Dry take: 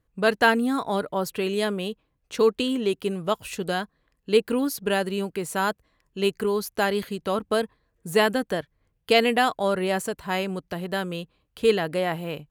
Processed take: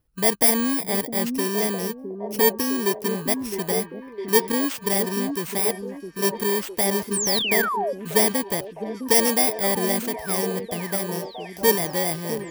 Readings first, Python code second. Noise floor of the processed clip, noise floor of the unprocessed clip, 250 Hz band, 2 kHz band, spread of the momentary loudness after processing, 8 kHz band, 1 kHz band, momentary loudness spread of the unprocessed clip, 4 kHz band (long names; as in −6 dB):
−41 dBFS, −73 dBFS, +1.5 dB, −1.0 dB, 10 LU, +14.5 dB, −1.0 dB, 12 LU, +2.5 dB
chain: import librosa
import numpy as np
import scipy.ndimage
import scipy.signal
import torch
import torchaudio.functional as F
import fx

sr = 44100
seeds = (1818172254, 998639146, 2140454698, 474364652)

y = fx.bit_reversed(x, sr, seeds[0], block=32)
y = fx.spec_paint(y, sr, seeds[1], shape='fall', start_s=7.13, length_s=0.8, low_hz=510.0, high_hz=9700.0, level_db=-26.0)
y = fx.echo_stepped(y, sr, ms=659, hz=280.0, octaves=0.7, feedback_pct=70, wet_db=-4)
y = F.gain(torch.from_numpy(y), 1.0).numpy()